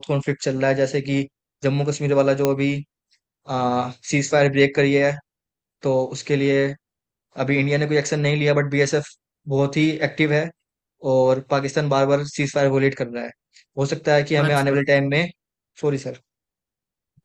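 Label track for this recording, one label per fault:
2.450000	2.450000	pop -5 dBFS

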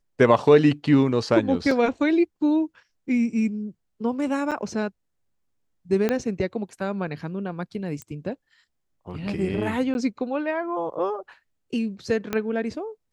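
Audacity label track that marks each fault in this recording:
1.710000	1.710000	gap 3.1 ms
4.510000	4.520000	gap 7 ms
6.090000	6.090000	pop -10 dBFS
8.020000	8.020000	pop -20 dBFS
9.940000	9.950000	gap 11 ms
12.330000	12.330000	pop -11 dBFS

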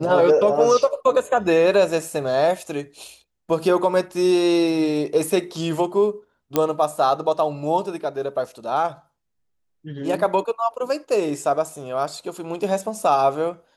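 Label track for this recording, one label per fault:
6.560000	6.560000	pop -5 dBFS

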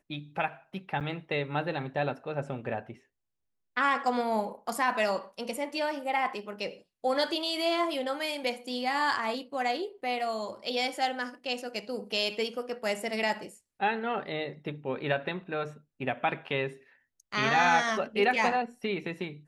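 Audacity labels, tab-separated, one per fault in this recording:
1.000000	1.010000	gap 8 ms

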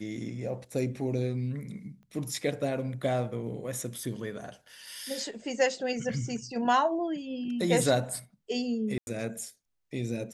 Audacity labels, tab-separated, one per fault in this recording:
2.030000	2.030000	pop -45 dBFS
8.980000	9.070000	gap 91 ms

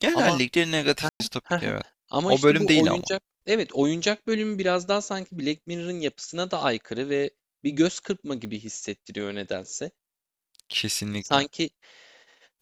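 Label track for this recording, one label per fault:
1.090000	1.200000	gap 0.11 s
8.450000	8.450000	pop -23 dBFS

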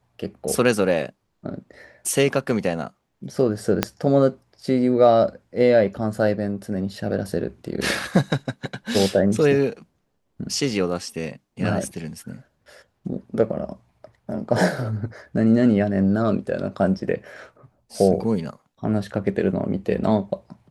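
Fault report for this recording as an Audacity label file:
3.830000	3.830000	pop -3 dBFS

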